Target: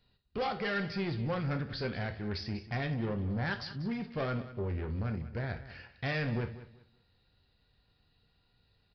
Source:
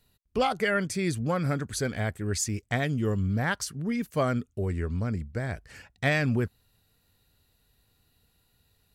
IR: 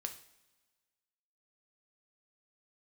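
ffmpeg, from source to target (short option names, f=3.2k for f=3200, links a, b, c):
-filter_complex "[0:a]aresample=11025,asoftclip=type=tanh:threshold=-27.5dB,aresample=44100,aecho=1:1:191|382|573:0.178|0.0445|0.0111[a];[1:a]atrim=start_sample=2205,atrim=end_sample=3969[b];[a][b]afir=irnorm=-1:irlink=0"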